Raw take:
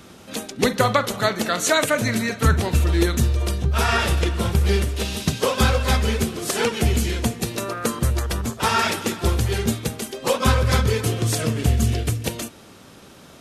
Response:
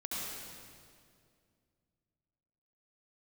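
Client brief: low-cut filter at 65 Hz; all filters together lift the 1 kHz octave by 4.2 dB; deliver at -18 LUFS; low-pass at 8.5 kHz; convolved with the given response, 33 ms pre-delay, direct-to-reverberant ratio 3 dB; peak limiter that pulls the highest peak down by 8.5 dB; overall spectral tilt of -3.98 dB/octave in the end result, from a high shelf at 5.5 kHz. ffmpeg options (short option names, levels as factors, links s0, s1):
-filter_complex "[0:a]highpass=65,lowpass=8500,equalizer=f=1000:t=o:g=5,highshelf=f=5500:g=9,alimiter=limit=0.355:level=0:latency=1,asplit=2[s0][s1];[1:a]atrim=start_sample=2205,adelay=33[s2];[s1][s2]afir=irnorm=-1:irlink=0,volume=0.501[s3];[s0][s3]amix=inputs=2:normalize=0,volume=1.26"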